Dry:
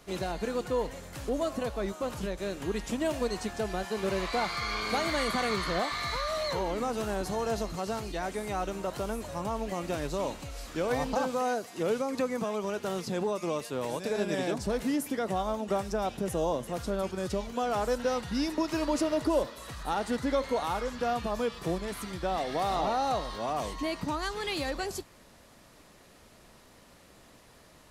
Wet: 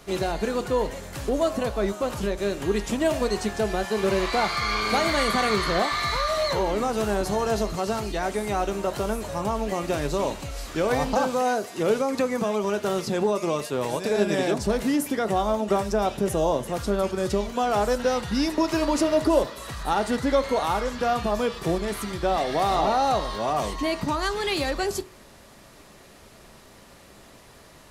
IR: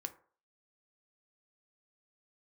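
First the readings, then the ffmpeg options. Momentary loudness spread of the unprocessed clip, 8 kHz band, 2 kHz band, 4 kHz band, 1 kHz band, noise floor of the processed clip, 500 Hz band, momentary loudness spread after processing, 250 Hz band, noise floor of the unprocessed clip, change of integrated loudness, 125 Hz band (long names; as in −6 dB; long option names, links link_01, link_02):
6 LU, +6.5 dB, +6.5 dB, +6.5 dB, +7.0 dB, −50 dBFS, +7.0 dB, 5 LU, +6.0 dB, −57 dBFS, +6.5 dB, +6.5 dB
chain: -filter_complex "[0:a]asplit=2[link_01][link_02];[1:a]atrim=start_sample=2205,asetrate=52920,aresample=44100[link_03];[link_02][link_03]afir=irnorm=-1:irlink=0,volume=5.5dB[link_04];[link_01][link_04]amix=inputs=2:normalize=0"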